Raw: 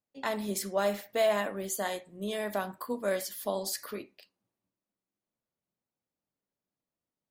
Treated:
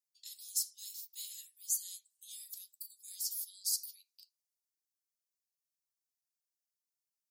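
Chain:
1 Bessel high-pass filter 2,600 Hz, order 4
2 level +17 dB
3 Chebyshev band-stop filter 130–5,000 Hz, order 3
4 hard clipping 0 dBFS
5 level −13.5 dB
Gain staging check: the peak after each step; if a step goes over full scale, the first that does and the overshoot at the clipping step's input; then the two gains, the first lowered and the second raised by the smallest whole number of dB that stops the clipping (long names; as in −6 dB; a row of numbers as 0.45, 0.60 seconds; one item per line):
−22.0, −5.0, −5.0, −5.0, −18.5 dBFS
no step passes full scale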